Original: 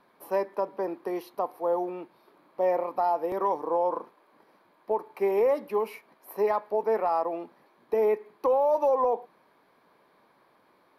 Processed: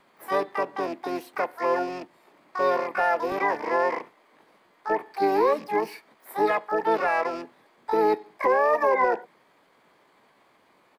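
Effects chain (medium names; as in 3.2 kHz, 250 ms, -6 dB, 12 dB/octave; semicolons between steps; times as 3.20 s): rattle on loud lows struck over -45 dBFS, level -37 dBFS; harmony voices -5 st -8 dB, +12 st -3 dB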